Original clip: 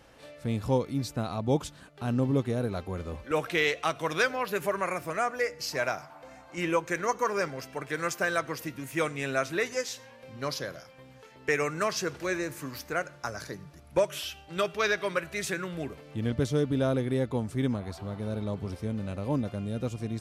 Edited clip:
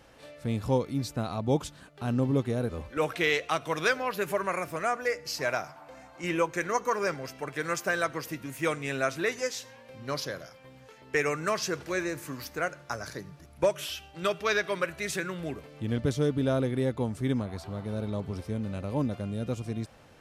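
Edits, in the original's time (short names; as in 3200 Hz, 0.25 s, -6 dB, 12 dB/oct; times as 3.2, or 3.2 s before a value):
2.69–3.03 cut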